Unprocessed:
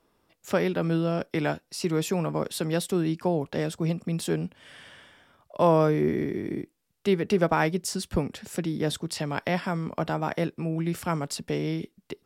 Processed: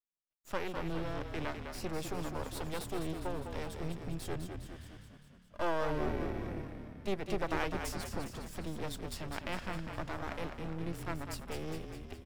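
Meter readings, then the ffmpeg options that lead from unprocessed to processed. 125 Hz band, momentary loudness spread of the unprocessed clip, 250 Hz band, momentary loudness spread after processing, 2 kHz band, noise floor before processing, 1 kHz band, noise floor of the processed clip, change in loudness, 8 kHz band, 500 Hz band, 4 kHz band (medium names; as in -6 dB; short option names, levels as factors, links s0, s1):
-12.0 dB, 9 LU, -13.0 dB, 9 LU, -8.0 dB, -71 dBFS, -9.5 dB, -60 dBFS, -12.0 dB, -11.0 dB, -12.5 dB, -9.5 dB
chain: -filter_complex "[0:a]agate=range=0.0224:threshold=0.00447:ratio=3:detection=peak,aeval=exprs='max(val(0),0)':c=same,asplit=9[s0][s1][s2][s3][s4][s5][s6][s7][s8];[s1]adelay=204,afreqshift=-36,volume=0.473[s9];[s2]adelay=408,afreqshift=-72,volume=0.288[s10];[s3]adelay=612,afreqshift=-108,volume=0.176[s11];[s4]adelay=816,afreqshift=-144,volume=0.107[s12];[s5]adelay=1020,afreqshift=-180,volume=0.0653[s13];[s6]adelay=1224,afreqshift=-216,volume=0.0398[s14];[s7]adelay=1428,afreqshift=-252,volume=0.0243[s15];[s8]adelay=1632,afreqshift=-288,volume=0.0148[s16];[s0][s9][s10][s11][s12][s13][s14][s15][s16]amix=inputs=9:normalize=0,volume=0.422"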